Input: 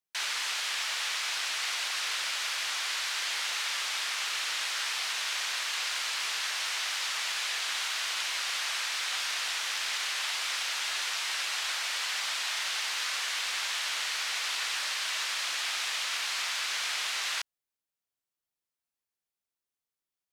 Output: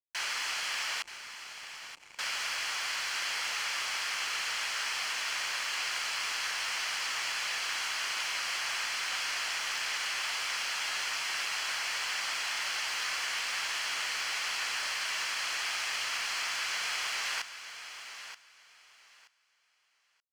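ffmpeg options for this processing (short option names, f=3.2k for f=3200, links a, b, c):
-filter_complex "[0:a]asettb=1/sr,asplit=3[a][b][c];[a]atrim=end=1.024[d];[b]atrim=start=1.02:end=2.19,asetpts=PTS-STARTPTS,afade=t=in:d=0.004:c=qsin,afade=t=out:st=1.166:d=0.004:c=qsin,asplit=3[e][f][g];[e]bandpass=f=300:t=q:w=8,volume=0dB[h];[f]bandpass=f=870:t=q:w=8,volume=-6dB[i];[g]bandpass=f=2.24k:t=q:w=8,volume=-9dB[j];[h][i][j]amix=inputs=3:normalize=0[k];[c]atrim=start=2.186[l];[d][k]acrossfade=d=0.004:c1=hsin:c2=qsin[m];[m][l]acrossfade=d=0.004:c1=qsin:c2=hsin,acrusher=bits=6:mix=0:aa=0.5,highshelf=f=9.2k:g=-9,bandreject=f=3.7k:w=5.4,aecho=1:1:928|1856|2784:0.282|0.0564|0.0113"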